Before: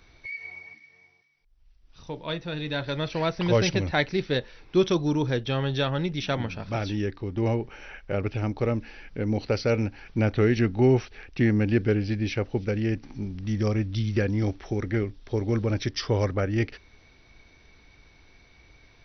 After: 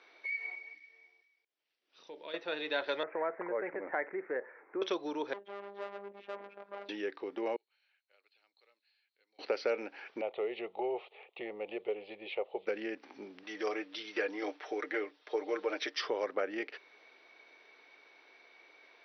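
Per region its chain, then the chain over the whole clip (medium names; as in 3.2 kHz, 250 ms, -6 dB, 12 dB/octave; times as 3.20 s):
0.55–2.34 s: peaking EQ 970 Hz -8.5 dB 1.9 oct + compression 3:1, threshold -39 dBFS
3.03–4.82 s: steep low-pass 2.1 kHz 72 dB/octave + compression 5:1, threshold -27 dBFS
5.33–6.89 s: low-pass 1.1 kHz + valve stage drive 33 dB, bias 0.7 + robot voice 200 Hz
7.56–9.39 s: band-pass filter 4.2 kHz, Q 19 + distance through air 130 m
10.21–12.67 s: steep low-pass 3.7 kHz 48 dB/octave + static phaser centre 660 Hz, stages 4
13.43–15.97 s: high-pass 430 Hz 6 dB/octave + comb 6.6 ms, depth 62%
whole clip: low-pass 3.4 kHz 12 dB/octave; compression, threshold -26 dBFS; high-pass 390 Hz 24 dB/octave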